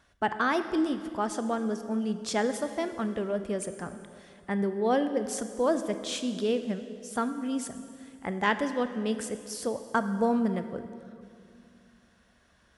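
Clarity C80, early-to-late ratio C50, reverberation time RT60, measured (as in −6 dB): 11.0 dB, 10.5 dB, 2.3 s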